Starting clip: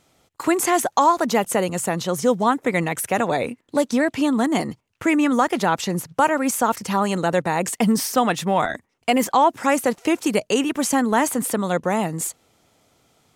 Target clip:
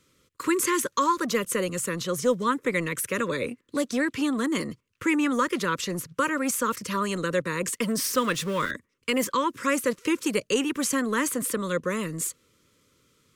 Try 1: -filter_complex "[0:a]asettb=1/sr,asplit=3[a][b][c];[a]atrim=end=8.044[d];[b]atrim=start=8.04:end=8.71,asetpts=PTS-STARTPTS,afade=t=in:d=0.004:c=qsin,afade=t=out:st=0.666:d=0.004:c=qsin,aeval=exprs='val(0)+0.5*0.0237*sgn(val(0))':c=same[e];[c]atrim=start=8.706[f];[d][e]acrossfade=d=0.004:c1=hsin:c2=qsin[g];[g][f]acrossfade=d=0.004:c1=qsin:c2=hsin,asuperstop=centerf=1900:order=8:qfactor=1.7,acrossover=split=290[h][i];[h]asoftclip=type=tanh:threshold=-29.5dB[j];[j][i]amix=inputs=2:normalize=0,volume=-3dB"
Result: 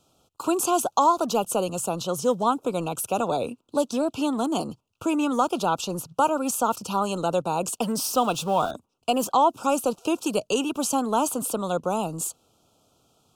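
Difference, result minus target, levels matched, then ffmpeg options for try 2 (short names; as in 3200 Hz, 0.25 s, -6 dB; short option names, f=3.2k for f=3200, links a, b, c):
2000 Hz band -11.0 dB
-filter_complex "[0:a]asettb=1/sr,asplit=3[a][b][c];[a]atrim=end=8.044[d];[b]atrim=start=8.04:end=8.71,asetpts=PTS-STARTPTS,afade=t=in:d=0.004:c=qsin,afade=t=out:st=0.666:d=0.004:c=qsin,aeval=exprs='val(0)+0.5*0.0237*sgn(val(0))':c=same[e];[c]atrim=start=8.706[f];[d][e]acrossfade=d=0.004:c1=hsin:c2=qsin[g];[g][f]acrossfade=d=0.004:c1=qsin:c2=hsin,asuperstop=centerf=750:order=8:qfactor=1.7,acrossover=split=290[h][i];[h]asoftclip=type=tanh:threshold=-29.5dB[j];[j][i]amix=inputs=2:normalize=0,volume=-3dB"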